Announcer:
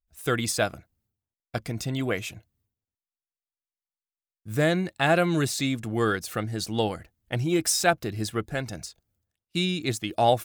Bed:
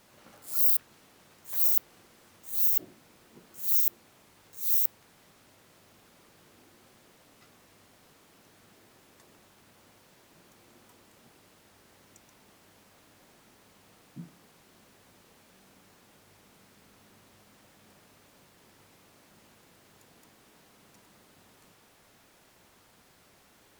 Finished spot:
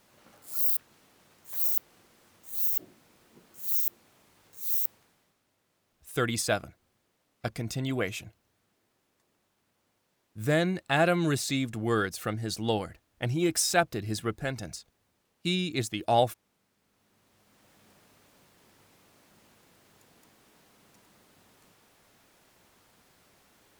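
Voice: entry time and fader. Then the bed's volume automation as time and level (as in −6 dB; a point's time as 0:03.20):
5.90 s, −2.5 dB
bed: 0:04.94 −3 dB
0:05.40 −15 dB
0:16.77 −15 dB
0:17.74 −2 dB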